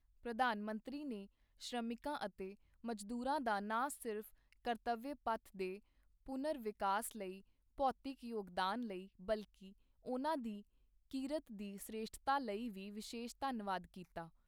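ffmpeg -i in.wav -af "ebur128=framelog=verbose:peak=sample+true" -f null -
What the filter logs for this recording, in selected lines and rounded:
Integrated loudness:
  I:         -43.1 LUFS
  Threshold: -53.5 LUFS
Loudness range:
  LRA:         1.9 LU
  Threshold: -63.5 LUFS
  LRA low:   -44.5 LUFS
  LRA high:  -42.6 LUFS
Sample peak:
  Peak:      -24.1 dBFS
True peak:
  Peak:      -24.0 dBFS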